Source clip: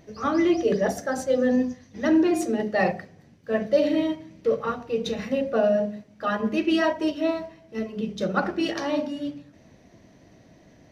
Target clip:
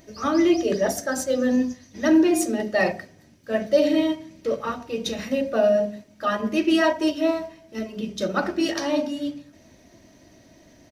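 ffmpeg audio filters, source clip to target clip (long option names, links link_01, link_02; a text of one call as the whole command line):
ffmpeg -i in.wav -af "highshelf=frequency=4800:gain=11.5,aecho=1:1:3.2:0.36" out.wav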